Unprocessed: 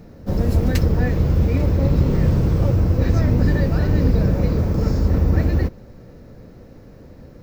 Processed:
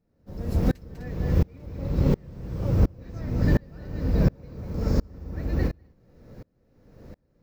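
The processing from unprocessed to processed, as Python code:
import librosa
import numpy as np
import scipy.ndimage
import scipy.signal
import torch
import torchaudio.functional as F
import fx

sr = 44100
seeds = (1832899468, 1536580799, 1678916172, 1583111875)

y = fx.echo_multitap(x, sr, ms=(198, 253), db=(-9.5, -13.5))
y = fx.tremolo_decay(y, sr, direction='swelling', hz=1.4, depth_db=33)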